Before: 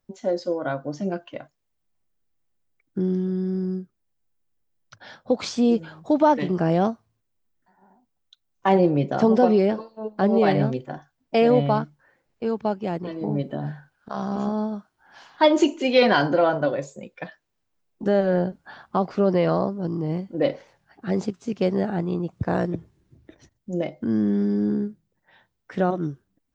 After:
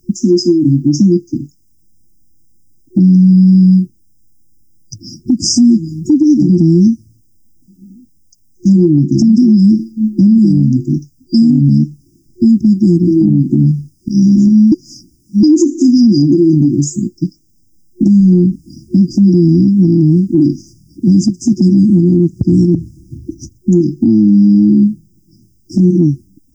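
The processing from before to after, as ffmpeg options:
-filter_complex "[0:a]asplit=3[s0][s1][s2];[s0]atrim=end=14.722[s3];[s1]atrim=start=14.718:end=15.432,asetpts=PTS-STARTPTS,areverse[s4];[s2]atrim=start=15.428[s5];[s3][s4]acrossfade=d=0.004:c1=hsin:c2=hsin[s6];[s6][s5]acrossfade=d=0.004:c1=hsin:c2=hsin,afftfilt=real='re*(1-between(b*sr/4096,360,4800))':imag='im*(1-between(b*sr/4096,360,4800))':win_size=4096:overlap=0.75,acompressor=threshold=0.0355:ratio=6,alimiter=level_in=20:limit=0.891:release=50:level=0:latency=1,volume=0.891"

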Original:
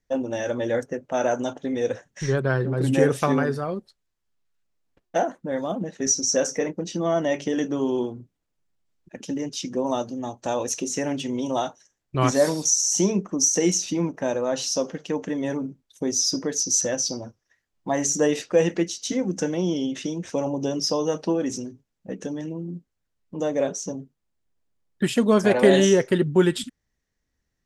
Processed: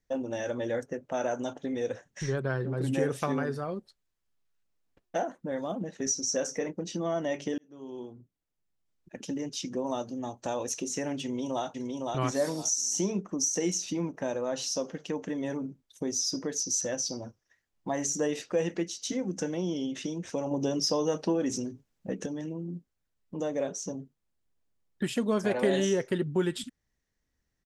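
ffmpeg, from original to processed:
-filter_complex "[0:a]asplit=2[s0][s1];[s1]afade=t=in:st=11.23:d=0.01,afade=t=out:st=11.67:d=0.01,aecho=0:1:510|1020|1530|2040:0.668344|0.167086|0.0417715|0.0104429[s2];[s0][s2]amix=inputs=2:normalize=0,asettb=1/sr,asplit=3[s3][s4][s5];[s3]atrim=end=20.514[s6];[s4]atrim=start=20.51:end=22.26,asetpts=PTS-STARTPTS,afade=t=in:d=0.004:c=qsin,afade=t=out:st=1.746:d=0.004:c=qsin,acontrast=30[s7];[s5]atrim=start=22.256[s8];[s6][s7]acrossfade=d=0.004:c1=hsin:c2=qsin[s9];[s9][s8]acrossfade=d=0.004:c1=qsin:c2=hsin,asplit=2[s10][s11];[s10]atrim=end=7.58,asetpts=PTS-STARTPTS,afade=t=out:st=7.576:d=0.004:c=hsin[s12];[s11]atrim=start=7.58,asetpts=PTS-STARTPTS,afade=t=in:d=1.74[s13];[s12][s13]concat=n=2:v=0:a=1,acompressor=threshold=0.0224:ratio=1.5,volume=0.75"

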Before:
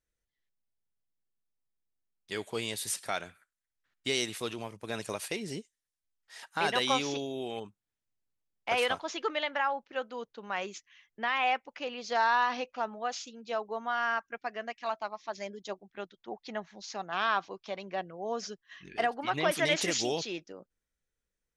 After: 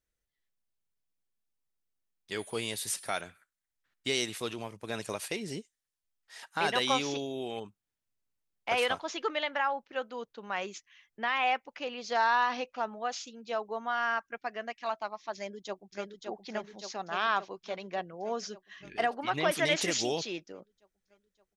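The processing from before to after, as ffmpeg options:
-filter_complex "[0:a]asettb=1/sr,asplit=3[s0][s1][s2];[s0]atrim=end=2.394[s3];[s1]atrim=start=2.39:end=3.21,asetpts=PTS-STARTPTS,afade=t=in:d=0.004:c=qsin,afade=t=out:st=0.816:d=0.004:c=qsin,aeval=exprs='val(0)+0.00316*sin(2*PI*9900*n/s)':c=same[s4];[s2]atrim=start=3.206[s5];[s3][s4]acrossfade=d=0.004:c1=hsin:c2=qsin[s6];[s6][s5]acrossfade=d=0.004:c1=qsin:c2=hsin,asplit=2[s7][s8];[s8]afade=t=in:st=15.35:d=0.01,afade=t=out:st=16.14:d=0.01,aecho=0:1:570|1140|1710|2280|2850|3420|3990|4560|5130|5700|6270|6840:0.595662|0.416964|0.291874|0.204312|0.143018|0.100113|0.0700791|0.0490553|0.0343387|0.0240371|0.016826|0.0117782[s9];[s7][s9]amix=inputs=2:normalize=0"

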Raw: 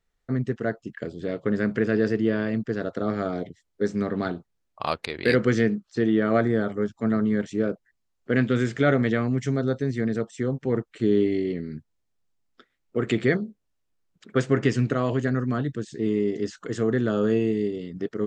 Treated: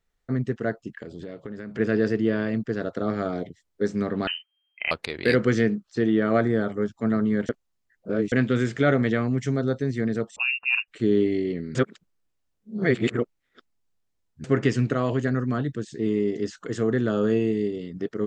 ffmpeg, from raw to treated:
-filter_complex "[0:a]asplit=3[s0][s1][s2];[s0]afade=t=out:st=0.94:d=0.02[s3];[s1]acompressor=threshold=0.0251:ratio=8:attack=3.2:release=140:knee=1:detection=peak,afade=t=in:st=0.94:d=0.02,afade=t=out:st=1.78:d=0.02[s4];[s2]afade=t=in:st=1.78:d=0.02[s5];[s3][s4][s5]amix=inputs=3:normalize=0,asettb=1/sr,asplit=3[s6][s7][s8];[s6]atrim=end=4.274[s9];[s7]atrim=start=4.27:end=4.91,asetpts=PTS-STARTPTS,afade=t=in:d=0.004:c=qsin,afade=t=out:st=0.636:d=0.004:c=qsin,lowpass=f=2700:t=q:w=0.5098,lowpass=f=2700:t=q:w=0.6013,lowpass=f=2700:t=q:w=0.9,lowpass=f=2700:t=q:w=2.563,afreqshift=-3200[s10];[s8]atrim=start=4.906[s11];[s9][s10]acrossfade=d=0.004:c1=hsin:c2=qsin[s12];[s12][s11]acrossfade=d=0.004:c1=qsin:c2=hsin,asettb=1/sr,asplit=3[s13][s14][s15];[s13]atrim=end=10.364[s16];[s14]atrim=start=10.36:end=10.88,asetpts=PTS-STARTPTS,afade=t=in:d=0.004:c=qsin,afade=t=out:st=0.516:d=0.004:c=qsin,lowpass=f=2500:t=q:w=0.5098,lowpass=f=2500:t=q:w=0.6013,lowpass=f=2500:t=q:w=0.9,lowpass=f=2500:t=q:w=2.563,afreqshift=-2900[s17];[s15]atrim=start=10.876[s18];[s16][s17]acrossfade=d=0.004:c1=hsin:c2=qsin[s19];[s19][s18]acrossfade=d=0.004:c1=qsin:c2=hsin,asplit=5[s20][s21][s22][s23][s24];[s20]atrim=end=7.492[s25];[s21]atrim=start=7.488:end=8.322,asetpts=PTS-STARTPTS,areverse[s26];[s22]atrim=start=8.318:end=11.752[s27];[s23]atrim=start=11.748:end=14.442,asetpts=PTS-STARTPTS,areverse[s28];[s24]atrim=start=14.438[s29];[s25][s26]acrossfade=d=0.004:c1=hsin:c2=hsin[s30];[s30][s27]acrossfade=d=0.004:c1=hsin:c2=hsin[s31];[s31][s28]acrossfade=d=0.004:c1=hsin:c2=hsin[s32];[s32][s29]acrossfade=d=0.004:c1=hsin:c2=hsin"

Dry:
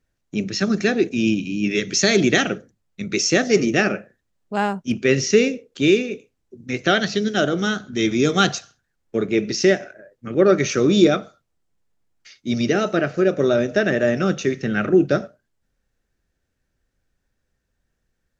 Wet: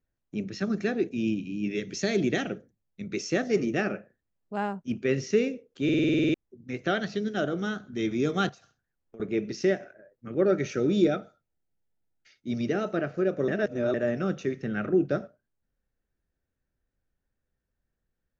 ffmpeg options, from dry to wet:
-filter_complex "[0:a]asettb=1/sr,asplit=3[s0][s1][s2];[s0]atrim=end=1.064[s3];[s1]atrim=start=1.06:end=3.13,asetpts=PTS-STARTPTS,afade=t=in:d=0.004:c=qsin,afade=t=out:st=2.066:d=0.004:c=qsin,equalizer=f=1200:w=1.4:g=-4.5[s4];[s2]atrim=start=3.126[s5];[s3][s4]acrossfade=d=0.004:c1=hsin:c2=qsin[s6];[s6][s5]acrossfade=d=0.004:c1=qsin:c2=hsin,asettb=1/sr,asplit=3[s7][s8][s9];[s7]atrim=end=8.494[s10];[s8]atrim=start=8.49:end=9.2,asetpts=PTS-STARTPTS,afade=t=in:d=0.004:c=qsin,afade=t=out:st=0.706:d=0.004:c=qsin,acompressor=threshold=0.0178:ratio=12:attack=3.2:release=140:knee=1:detection=peak[s11];[s9]atrim=start=9.196[s12];[s10][s11]acrossfade=d=0.004:c1=hsin:c2=qsin[s13];[s13][s12]acrossfade=d=0.004:c1=qsin:c2=hsin,asettb=1/sr,asplit=3[s14][s15][s16];[s14]atrim=end=10.454[s17];[s15]atrim=start=10.45:end=12.5,asetpts=PTS-STARTPTS,afade=t=in:d=0.004:c=qsin,afade=t=out:st=2.046:d=0.004:c=qsin,asuperstop=centerf=1100:order=20:qfactor=4.5[s18];[s16]atrim=start=12.496[s19];[s17][s18]acrossfade=d=0.004:c1=hsin:c2=qsin[s20];[s20][s19]acrossfade=d=0.004:c1=qsin:c2=hsin,asplit=13[s21][s22][s23][s24][s25][s26][s27][s28][s29][s30][s31][s32][s33];[s21]atrim=end=5.892[s34];[s22]atrim=start=5.838:end=5.892[s35];[s23]atrim=start=5.838:end=5.892[s36];[s24]atrim=start=5.838:end=5.892[s37];[s25]atrim=start=5.838:end=5.892[s38];[s26]atrim=start=5.838:end=5.892[s39];[s27]atrim=start=5.838:end=5.892[s40];[s28]atrim=start=5.838:end=5.892[s41];[s29]atrim=start=5.838:end=5.892[s42];[s30]atrim=start=5.838:end=5.892[s43];[s31]atrim=start=6.338:end=13.482[s44];[s32]atrim=start=13.478:end=13.942,asetpts=PTS-STARTPTS,areverse[s45];[s33]atrim=start=13.938[s46];[s34][s35]acrossfade=d=0.004:c1=hsin:c2=hsin[s47];[s47][s36]acrossfade=d=0.004:c1=hsin:c2=hsin[s48];[s48][s37]acrossfade=d=0.004:c1=hsin:c2=hsin[s49];[s49][s38]acrossfade=d=0.004:c1=hsin:c2=hsin[s50];[s50][s39]acrossfade=d=0.004:c1=hsin:c2=hsin[s51];[s51][s40]acrossfade=d=0.004:c1=hsin:c2=hsin[s52];[s52][s41]acrossfade=d=0.004:c1=hsin:c2=hsin[s53];[s53][s42]acrossfade=d=0.004:c1=hsin:c2=hsin[s54];[s54][s43]acrossfade=d=0.004:c1=hsin:c2=hsin[s55];[s55][s44]acrossfade=d=0.004:c1=hsin:c2=hsin[s56];[s56][s45]acrossfade=d=0.004:c1=hsin:c2=hsin[s57];[s57][s46]acrossfade=d=0.004:c1=hsin:c2=hsin,highshelf=f=2800:g=-10.5,volume=0.398"

